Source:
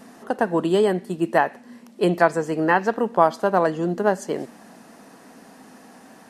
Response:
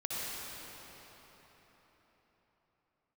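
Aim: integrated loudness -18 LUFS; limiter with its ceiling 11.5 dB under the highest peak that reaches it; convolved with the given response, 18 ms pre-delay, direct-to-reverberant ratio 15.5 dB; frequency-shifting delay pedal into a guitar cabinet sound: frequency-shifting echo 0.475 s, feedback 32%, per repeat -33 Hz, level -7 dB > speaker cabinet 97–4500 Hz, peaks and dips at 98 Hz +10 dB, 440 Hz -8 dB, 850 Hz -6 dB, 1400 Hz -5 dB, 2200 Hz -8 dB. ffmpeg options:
-filter_complex "[0:a]alimiter=limit=-13dB:level=0:latency=1,asplit=2[a][b];[1:a]atrim=start_sample=2205,adelay=18[c];[b][c]afir=irnorm=-1:irlink=0,volume=-20.5dB[d];[a][d]amix=inputs=2:normalize=0,asplit=5[e][f][g][h][i];[f]adelay=475,afreqshift=-33,volume=-7dB[j];[g]adelay=950,afreqshift=-66,volume=-16.9dB[k];[h]adelay=1425,afreqshift=-99,volume=-26.8dB[l];[i]adelay=1900,afreqshift=-132,volume=-36.7dB[m];[e][j][k][l][m]amix=inputs=5:normalize=0,highpass=97,equalizer=f=98:t=q:w=4:g=10,equalizer=f=440:t=q:w=4:g=-8,equalizer=f=850:t=q:w=4:g=-6,equalizer=f=1.4k:t=q:w=4:g=-5,equalizer=f=2.2k:t=q:w=4:g=-8,lowpass=f=4.5k:w=0.5412,lowpass=f=4.5k:w=1.3066,volume=9.5dB"

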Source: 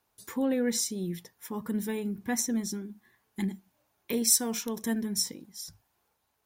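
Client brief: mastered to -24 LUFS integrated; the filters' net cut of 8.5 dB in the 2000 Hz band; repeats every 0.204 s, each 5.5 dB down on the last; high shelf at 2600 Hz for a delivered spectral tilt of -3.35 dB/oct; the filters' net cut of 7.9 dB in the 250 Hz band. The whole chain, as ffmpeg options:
-af "equalizer=f=250:t=o:g=-9,equalizer=f=2k:t=o:g=-7.5,highshelf=f=2.6k:g=-6.5,aecho=1:1:204|408|612|816|1020|1224|1428:0.531|0.281|0.149|0.079|0.0419|0.0222|0.0118,volume=11.5dB"

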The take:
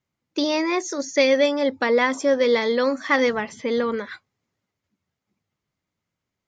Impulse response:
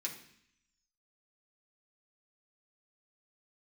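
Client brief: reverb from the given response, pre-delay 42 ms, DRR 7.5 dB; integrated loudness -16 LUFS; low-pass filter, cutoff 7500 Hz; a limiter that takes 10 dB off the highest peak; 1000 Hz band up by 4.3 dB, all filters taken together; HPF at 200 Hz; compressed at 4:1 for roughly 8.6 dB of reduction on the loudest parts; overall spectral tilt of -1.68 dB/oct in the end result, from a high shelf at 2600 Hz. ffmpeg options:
-filter_complex "[0:a]highpass=200,lowpass=7.5k,equalizer=f=1k:t=o:g=6,highshelf=f=2.6k:g=-6.5,acompressor=threshold=-24dB:ratio=4,alimiter=limit=-21.5dB:level=0:latency=1,asplit=2[a][b];[1:a]atrim=start_sample=2205,adelay=42[c];[b][c]afir=irnorm=-1:irlink=0,volume=-7.5dB[d];[a][d]amix=inputs=2:normalize=0,volume=14.5dB"

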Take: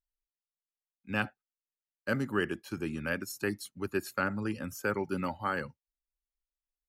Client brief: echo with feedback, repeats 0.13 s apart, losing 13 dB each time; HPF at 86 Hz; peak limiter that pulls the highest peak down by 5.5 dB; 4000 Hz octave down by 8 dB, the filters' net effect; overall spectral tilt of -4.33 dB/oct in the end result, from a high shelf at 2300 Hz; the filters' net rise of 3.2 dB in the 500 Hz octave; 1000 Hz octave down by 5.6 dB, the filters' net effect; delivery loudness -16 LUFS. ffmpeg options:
-af "highpass=86,equalizer=f=500:t=o:g=6,equalizer=f=1k:t=o:g=-7.5,highshelf=f=2.3k:g=-6,equalizer=f=4k:t=o:g=-5.5,alimiter=limit=-22.5dB:level=0:latency=1,aecho=1:1:130|260|390:0.224|0.0493|0.0108,volume=20dB"

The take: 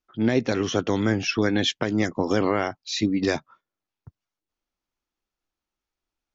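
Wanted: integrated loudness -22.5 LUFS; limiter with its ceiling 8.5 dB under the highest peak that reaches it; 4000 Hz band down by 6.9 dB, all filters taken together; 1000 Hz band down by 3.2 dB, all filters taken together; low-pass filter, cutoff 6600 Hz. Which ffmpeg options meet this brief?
-af "lowpass=6.6k,equalizer=f=1k:t=o:g=-4,equalizer=f=4k:t=o:g=-8.5,volume=7.5dB,alimiter=limit=-11.5dB:level=0:latency=1"

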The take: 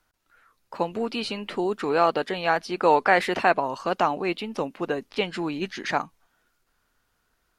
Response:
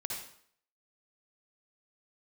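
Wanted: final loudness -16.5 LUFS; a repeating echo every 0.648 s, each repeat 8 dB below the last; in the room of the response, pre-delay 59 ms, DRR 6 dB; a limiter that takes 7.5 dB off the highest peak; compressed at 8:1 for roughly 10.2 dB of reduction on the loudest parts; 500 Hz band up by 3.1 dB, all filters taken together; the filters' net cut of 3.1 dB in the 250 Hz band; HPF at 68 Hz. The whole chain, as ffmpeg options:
-filter_complex "[0:a]highpass=68,equalizer=f=250:t=o:g=-8.5,equalizer=f=500:t=o:g=6,acompressor=threshold=-22dB:ratio=8,alimiter=limit=-17.5dB:level=0:latency=1,aecho=1:1:648|1296|1944|2592|3240:0.398|0.159|0.0637|0.0255|0.0102,asplit=2[a][b];[1:a]atrim=start_sample=2205,adelay=59[c];[b][c]afir=irnorm=-1:irlink=0,volume=-7.5dB[d];[a][d]amix=inputs=2:normalize=0,volume=12.5dB"

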